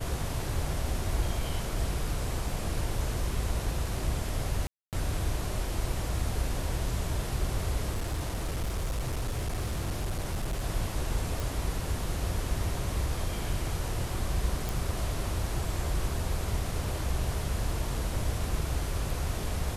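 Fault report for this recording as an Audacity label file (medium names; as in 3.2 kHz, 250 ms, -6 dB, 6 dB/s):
4.670000	4.930000	dropout 258 ms
7.910000	10.620000	clipped -27 dBFS
11.400000	11.400000	pop
14.690000	14.690000	pop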